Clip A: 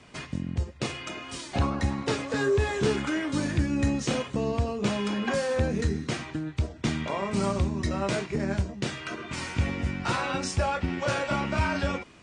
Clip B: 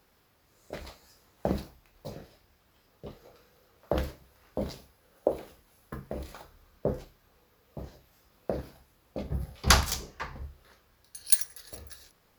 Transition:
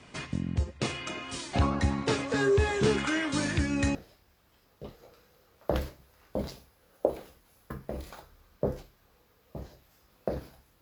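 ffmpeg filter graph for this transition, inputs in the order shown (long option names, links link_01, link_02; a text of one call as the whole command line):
ffmpeg -i cue0.wav -i cue1.wav -filter_complex "[0:a]asettb=1/sr,asplit=3[link_01][link_02][link_03];[link_01]atrim=end=2.984[link_04];[link_02]atrim=start=2.98:end=3.95,asetpts=PTS-STARTPTS,afade=type=in:duration=0.004:curve=qsin,afade=type=out:start_time=0.966:duration=0.004:curve=qsin,tiltshelf=frequency=640:gain=-3.5[link_05];[link_03]atrim=start=3.946[link_06];[link_04][link_05]acrossfade=duration=0.004:curve1=hsin:curve2=qsin[link_07];[link_07][link_06]acrossfade=duration=0.004:curve1=qsin:curve2=hsin,apad=whole_dur=10.81,atrim=end=10.81,atrim=end=3.952[link_08];[1:a]atrim=start=2.168:end=9.03[link_09];[link_08][link_09]acrossfade=duration=0.004:curve1=hsin:curve2=hsin" out.wav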